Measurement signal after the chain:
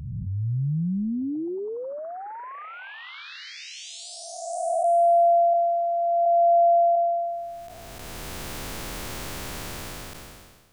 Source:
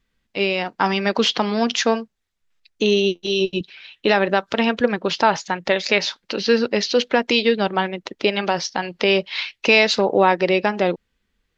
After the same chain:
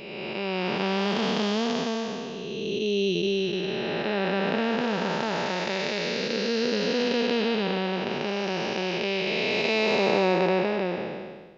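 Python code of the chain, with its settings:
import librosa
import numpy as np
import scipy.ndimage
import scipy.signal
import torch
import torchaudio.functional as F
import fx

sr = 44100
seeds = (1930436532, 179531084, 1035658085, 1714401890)

y = fx.spec_blur(x, sr, span_ms=773.0)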